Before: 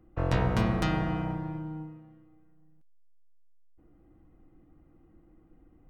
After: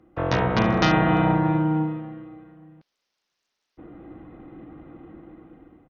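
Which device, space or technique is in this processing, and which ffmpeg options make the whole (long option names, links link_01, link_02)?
Bluetooth headset: -af "highpass=frequency=240:poles=1,dynaudnorm=framelen=520:gausssize=5:maxgain=14dB,aresample=16000,aresample=44100,volume=7.5dB" -ar 48000 -c:a sbc -b:a 64k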